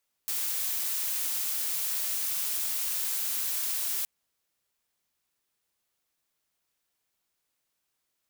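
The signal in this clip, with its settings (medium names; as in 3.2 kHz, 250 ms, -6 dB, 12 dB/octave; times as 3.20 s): noise blue, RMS -30.5 dBFS 3.77 s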